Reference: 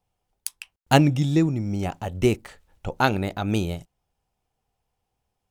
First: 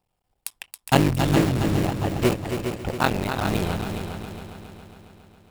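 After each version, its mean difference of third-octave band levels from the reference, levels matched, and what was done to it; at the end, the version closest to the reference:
10.5 dB: sub-harmonics by changed cycles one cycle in 3, muted
notch filter 6,200 Hz, Q 7.5
in parallel at −8 dB: wrap-around overflow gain 20 dB
on the sum: echo machine with several playback heads 137 ms, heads second and third, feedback 54%, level −8 dB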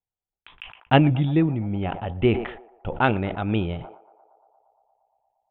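6.5 dB: noise gate −46 dBFS, range −20 dB
Butterworth low-pass 3,500 Hz 96 dB per octave
on a send: feedback echo with a band-pass in the loop 116 ms, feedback 84%, band-pass 780 Hz, level −21.5 dB
on the sum: level that may fall only so fast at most 91 dB per second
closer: second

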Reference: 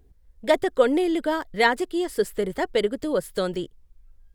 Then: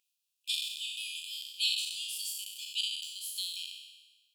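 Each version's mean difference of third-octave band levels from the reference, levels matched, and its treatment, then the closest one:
23.5 dB: peak hold with a decay on every bin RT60 1.21 s
linear-phase brick-wall high-pass 2,400 Hz
level −1.5 dB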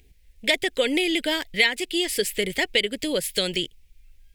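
6.5 dB: high shelf with overshoot 1,700 Hz +11.5 dB, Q 3
downward compressor 3 to 1, threshold −19 dBFS, peak gain reduction 10.5 dB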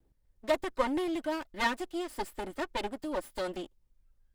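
5.0 dB: lower of the sound and its delayed copy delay 3.3 ms
low-shelf EQ 140 Hz −5.5 dB
level −8 dB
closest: third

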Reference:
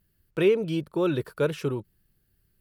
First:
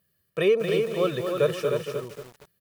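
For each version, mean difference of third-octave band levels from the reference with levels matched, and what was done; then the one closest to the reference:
8.0 dB: high-pass filter 180 Hz 12 dB per octave
comb filter 1.7 ms, depth 74%
single-tap delay 305 ms −5.5 dB
feedback echo at a low word length 229 ms, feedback 35%, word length 7 bits, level −6.5 dB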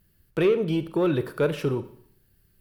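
3.5 dB: dynamic equaliser 6,900 Hz, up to −6 dB, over −53 dBFS, Q 0.72
in parallel at −1 dB: downward compressor, threshold −29 dBFS, peak gain reduction 12.5 dB
on the sum: soft clipping −13.5 dBFS, distortion −19 dB
four-comb reverb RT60 0.63 s, combs from 30 ms, DRR 12 dB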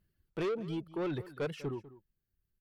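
4.5 dB: reverb reduction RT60 1.9 s
high-shelf EQ 5,900 Hz −10 dB
soft clipping −25.5 dBFS, distortion −8 dB
slap from a distant wall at 34 metres, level −17 dB
level −4.5 dB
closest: second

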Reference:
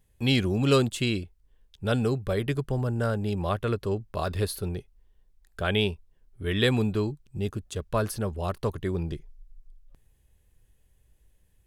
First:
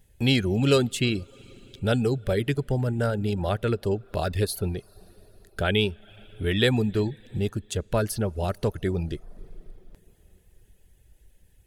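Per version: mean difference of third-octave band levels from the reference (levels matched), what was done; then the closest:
2.5 dB: in parallel at +0.5 dB: downward compressor, threshold −36 dBFS, peak gain reduction 17.5 dB
on the sum: parametric band 1,100 Hz −12.5 dB 0.21 octaves
four-comb reverb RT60 3.7 s, DRR 18.5 dB
reverb reduction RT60 0.52 s
level +1 dB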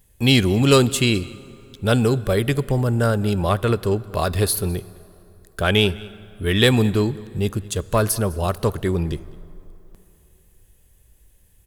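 3.5 dB: high-shelf EQ 7,300 Hz +10 dB
in parallel at −7 dB: asymmetric clip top −23 dBFS
on the sum: single-tap delay 207 ms −23 dB
dense smooth reverb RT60 3.1 s, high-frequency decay 0.65×, DRR 19 dB
level +4.5 dB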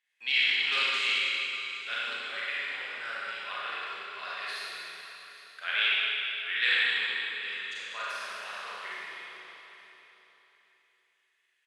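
17.0 dB: four-pole ladder band-pass 2,400 Hz, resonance 45%
on a send: repeating echo 816 ms, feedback 22%, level −16 dB
on the sum: four-comb reverb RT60 3 s, combs from 31 ms, DRR −9 dB
highs frequency-modulated by the lows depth 0.1 ms
level +7 dB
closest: first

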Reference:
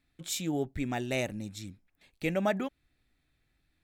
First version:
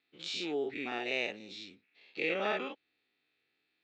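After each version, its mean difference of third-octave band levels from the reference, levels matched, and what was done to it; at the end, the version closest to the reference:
9.0 dB: every bin's largest magnitude spread in time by 120 ms
loudspeaker in its box 380–4,500 Hz, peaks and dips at 430 Hz +6 dB, 610 Hz −6 dB, 1,000 Hz −4 dB, 1,600 Hz −3 dB, 2,700 Hz +6 dB, 4,400 Hz +4 dB
level −5.5 dB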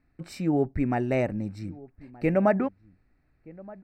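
6.5 dB: moving average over 13 samples
slap from a distant wall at 210 metres, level −21 dB
level +7.5 dB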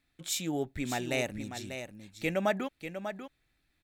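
4.0 dB: low-shelf EQ 380 Hz −5 dB
on a send: single-tap delay 593 ms −9 dB
on the sum: level +1.5 dB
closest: third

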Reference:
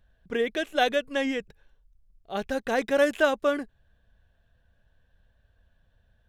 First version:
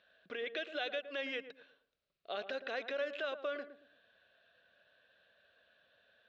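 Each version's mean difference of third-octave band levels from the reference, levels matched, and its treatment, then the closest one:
7.0 dB: downward compressor 16 to 1, threshold −36 dBFS, peak gain reduction 20.5 dB
brickwall limiter −33 dBFS, peak gain reduction 7 dB
loudspeaker in its box 480–4,700 Hz, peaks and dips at 590 Hz +4 dB, 880 Hz −9 dB, 1,400 Hz +4 dB, 2,600 Hz +6 dB, 3,900 Hz +7 dB
on a send: feedback echo with a low-pass in the loop 113 ms, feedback 32%, low-pass 890 Hz, level −9 dB
on the sum: level +4 dB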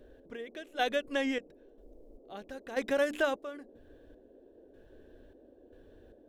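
4.5 dB: mains-hum notches 60/120/180/240/300 Hz
downward compressor 2 to 1, threshold −38 dBFS, peak gain reduction 12 dB
gate pattern "x...xxx..x" 76 BPM −12 dB
noise in a band 240–570 Hz −62 dBFS
level +4 dB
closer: second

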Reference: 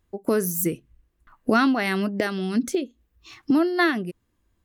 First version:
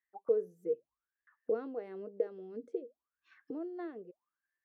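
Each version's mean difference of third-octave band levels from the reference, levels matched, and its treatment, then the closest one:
10.5 dB: envelope filter 470–1,900 Hz, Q 22, down, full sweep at −24 dBFS
level +4.5 dB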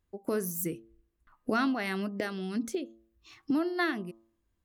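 1.0 dB: hum removal 112.7 Hz, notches 11
level −8.5 dB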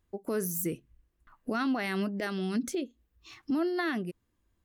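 2.0 dB: brickwall limiter −17.5 dBFS, peak gain reduction 10 dB
level −5 dB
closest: second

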